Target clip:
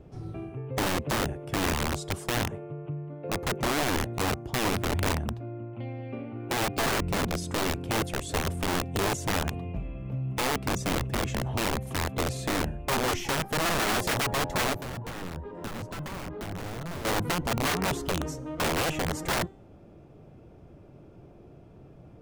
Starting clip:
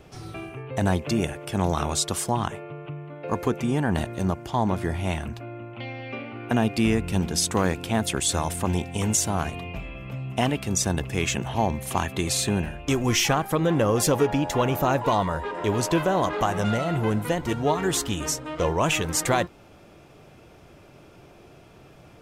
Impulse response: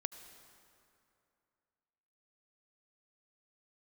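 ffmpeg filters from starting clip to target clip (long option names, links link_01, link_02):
-filter_complex "[0:a]tiltshelf=frequency=940:gain=9.5,bandreject=frequency=387.6:width_type=h:width=4,bandreject=frequency=775.2:width_type=h:width=4,bandreject=frequency=1162.8:width_type=h:width=4,bandreject=frequency=1550.4:width_type=h:width=4,bandreject=frequency=1938:width_type=h:width=4,bandreject=frequency=2325.6:width_type=h:width=4,bandreject=frequency=2713.2:width_type=h:width=4,bandreject=frequency=3100.8:width_type=h:width=4,bandreject=frequency=3488.4:width_type=h:width=4,bandreject=frequency=3876:width_type=h:width=4,bandreject=frequency=4263.6:width_type=h:width=4,bandreject=frequency=4651.2:width_type=h:width=4,bandreject=frequency=5038.8:width_type=h:width=4,bandreject=frequency=5426.4:width_type=h:width=4,bandreject=frequency=5814:width_type=h:width=4,bandreject=frequency=6201.6:width_type=h:width=4,bandreject=frequency=6589.2:width_type=h:width=4,bandreject=frequency=6976.8:width_type=h:width=4,bandreject=frequency=7364.4:width_type=h:width=4,bandreject=frequency=7752:width_type=h:width=4,bandreject=frequency=8139.6:width_type=h:width=4,bandreject=frequency=8527.2:width_type=h:width=4,bandreject=frequency=8914.8:width_type=h:width=4,bandreject=frequency=9302.4:width_type=h:width=4,bandreject=frequency=9690:width_type=h:width=4,bandreject=frequency=10077.6:width_type=h:width=4,bandreject=frequency=10465.2:width_type=h:width=4,bandreject=frequency=10852.8:width_type=h:width=4,bandreject=frequency=11240.4:width_type=h:width=4,bandreject=frequency=11628:width_type=h:width=4,bandreject=frequency=12015.6:width_type=h:width=4,bandreject=frequency=12403.2:width_type=h:width=4,bandreject=frequency=12790.8:width_type=h:width=4,bandreject=frequency=13178.4:width_type=h:width=4,bandreject=frequency=13566:width_type=h:width=4,bandreject=frequency=13953.6:width_type=h:width=4,bandreject=frequency=14341.2:width_type=h:width=4,bandreject=frequency=14728.8:width_type=h:width=4,bandreject=frequency=15116.4:width_type=h:width=4,bandreject=frequency=15504:width_type=h:width=4,aeval=exprs='(mod(5.01*val(0)+1,2)-1)/5.01':channel_layout=same,asettb=1/sr,asplit=3[link_01][link_02][link_03];[link_01]atrim=end=14.734[link_04];[link_02]atrim=start=14.73:end=17.05,asetpts=PTS-STARTPTS,afade=type=in:duration=0.004:curve=qsin,afade=type=out:start_time=2.316:duration=0.004:curve=qsin,acrossover=split=110|260|2400[link_05][link_06][link_07][link_08];[link_05]acompressor=threshold=-32dB:ratio=4[link_09];[link_06]acompressor=threshold=-32dB:ratio=4[link_10];[link_07]acompressor=threshold=-34dB:ratio=4[link_11];[link_08]acompressor=threshold=-40dB:ratio=4[link_12];[link_09][link_10][link_11][link_12]amix=inputs=4:normalize=0[link_13];[link_03]atrim=start=17.046[link_14];[link_04][link_13]acrossfade=duration=0.004:curve1=hsin:curve2=qsin[link_15];[link_15][link_14]acrossfade=duration=0.004:curve1=qsin:curve2=hsin,volume=-7.5dB"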